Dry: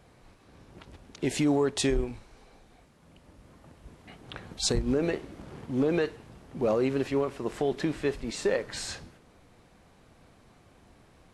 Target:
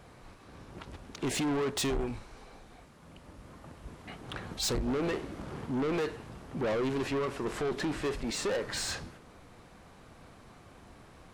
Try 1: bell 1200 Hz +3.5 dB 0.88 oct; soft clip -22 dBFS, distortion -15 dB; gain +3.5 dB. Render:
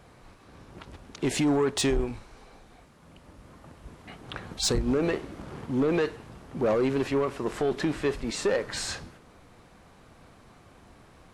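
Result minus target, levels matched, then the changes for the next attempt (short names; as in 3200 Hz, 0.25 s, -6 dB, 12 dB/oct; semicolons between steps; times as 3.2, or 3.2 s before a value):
soft clip: distortion -9 dB
change: soft clip -31.5 dBFS, distortion -6 dB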